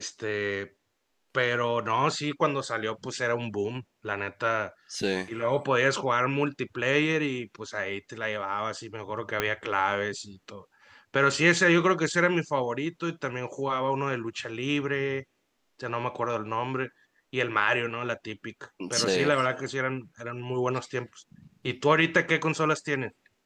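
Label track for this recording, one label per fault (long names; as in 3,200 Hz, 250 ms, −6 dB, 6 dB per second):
9.400000	9.400000	click −10 dBFS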